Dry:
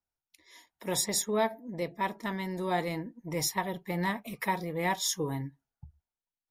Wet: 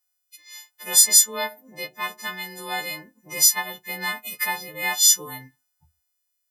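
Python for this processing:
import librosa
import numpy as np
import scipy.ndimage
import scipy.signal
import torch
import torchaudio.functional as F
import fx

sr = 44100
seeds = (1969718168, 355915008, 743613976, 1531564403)

y = fx.freq_snap(x, sr, grid_st=3)
y = fx.tilt_shelf(y, sr, db=-8.0, hz=680.0)
y = F.gain(torch.from_numpy(y), -2.0).numpy()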